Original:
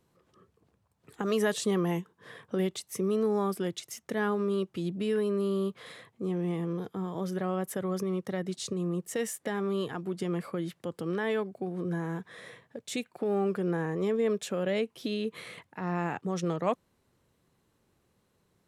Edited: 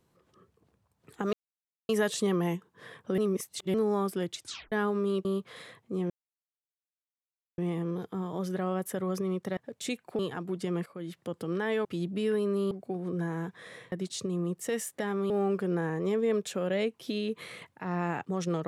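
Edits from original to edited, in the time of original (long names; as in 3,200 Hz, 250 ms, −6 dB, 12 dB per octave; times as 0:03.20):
0:01.33: splice in silence 0.56 s
0:02.62–0:03.18: reverse
0:03.83: tape stop 0.33 s
0:04.69–0:05.55: move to 0:11.43
0:06.40: splice in silence 1.48 s
0:08.39–0:09.77: swap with 0:12.64–0:13.26
0:10.44–0:10.82: fade in, from −16 dB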